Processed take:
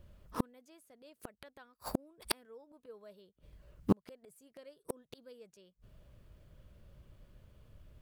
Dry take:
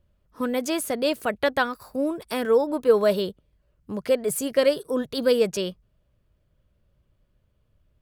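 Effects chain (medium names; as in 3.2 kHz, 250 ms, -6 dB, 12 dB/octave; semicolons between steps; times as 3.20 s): inverted gate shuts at -24 dBFS, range -42 dB; in parallel at -11 dB: bit crusher 8-bit; on the sum: trim +8 dB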